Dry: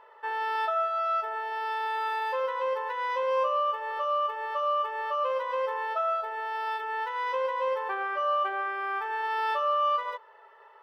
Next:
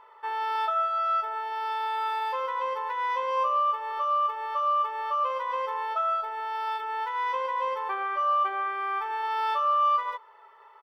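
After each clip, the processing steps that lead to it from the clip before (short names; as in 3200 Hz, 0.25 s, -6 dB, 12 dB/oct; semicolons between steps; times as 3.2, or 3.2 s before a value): comb 0.9 ms, depth 46%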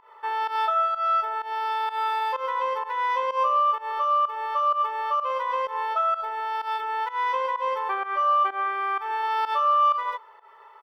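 pump 127 bpm, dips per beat 1, -17 dB, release 0.133 s; gain +3.5 dB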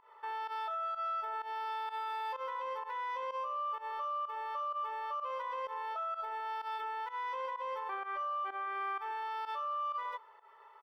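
limiter -23.5 dBFS, peak gain reduction 9.5 dB; gain -8 dB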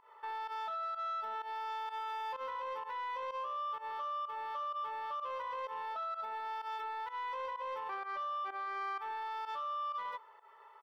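soft clip -32.5 dBFS, distortion -21 dB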